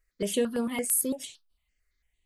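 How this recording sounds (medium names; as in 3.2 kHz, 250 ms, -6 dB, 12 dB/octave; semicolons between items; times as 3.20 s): notches that jump at a steady rate 8.9 Hz 890–6800 Hz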